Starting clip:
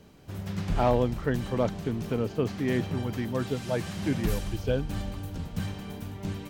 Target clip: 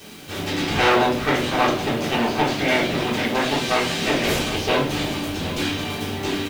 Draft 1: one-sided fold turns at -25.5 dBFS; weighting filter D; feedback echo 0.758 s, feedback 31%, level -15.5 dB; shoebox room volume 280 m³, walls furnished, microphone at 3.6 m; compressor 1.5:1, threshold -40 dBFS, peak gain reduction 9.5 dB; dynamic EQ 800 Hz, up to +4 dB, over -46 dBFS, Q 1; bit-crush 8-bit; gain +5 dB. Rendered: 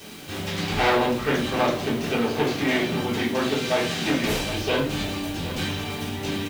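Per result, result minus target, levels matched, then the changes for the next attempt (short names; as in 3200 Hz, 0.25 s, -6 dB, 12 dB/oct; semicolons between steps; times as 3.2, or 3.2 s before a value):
one-sided fold: distortion -10 dB; compressor: peak gain reduction +3.5 dB
change: one-sided fold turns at -34 dBFS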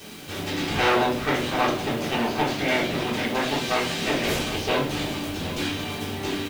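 compressor: peak gain reduction +3.5 dB
change: compressor 1.5:1, threshold -29.5 dBFS, peak gain reduction 5.5 dB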